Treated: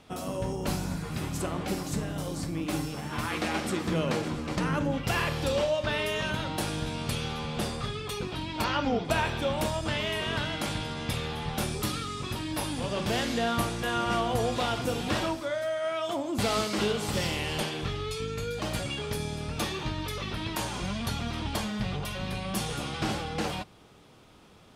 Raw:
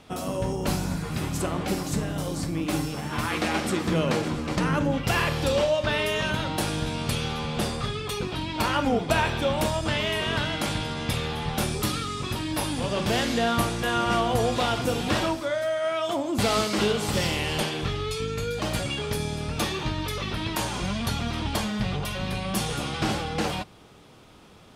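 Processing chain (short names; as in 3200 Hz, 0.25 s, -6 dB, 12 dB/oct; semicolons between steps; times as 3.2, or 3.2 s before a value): 8.64–9.05 resonant high shelf 7200 Hz -13 dB, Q 1.5; gain -4 dB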